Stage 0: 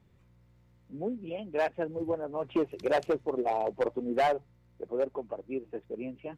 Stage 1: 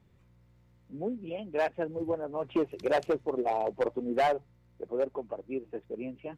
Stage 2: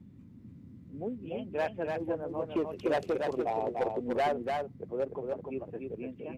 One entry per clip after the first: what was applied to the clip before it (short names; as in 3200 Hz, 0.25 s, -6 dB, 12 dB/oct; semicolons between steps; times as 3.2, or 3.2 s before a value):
nothing audible
band noise 78–260 Hz -49 dBFS; echo 0.294 s -4 dB; gain -3 dB